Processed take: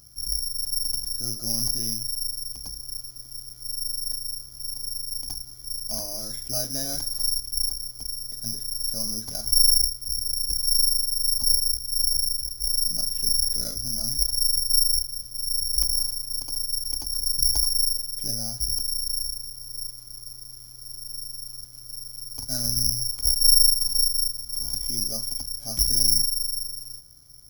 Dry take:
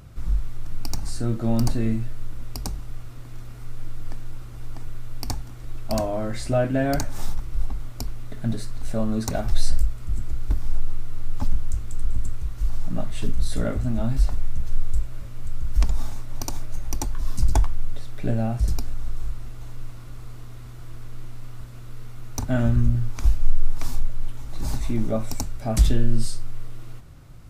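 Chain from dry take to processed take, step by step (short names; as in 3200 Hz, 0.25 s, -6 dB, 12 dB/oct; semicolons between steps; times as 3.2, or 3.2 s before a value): careless resampling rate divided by 8×, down filtered, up zero stuff; Doppler distortion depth 0.13 ms; gain -14.5 dB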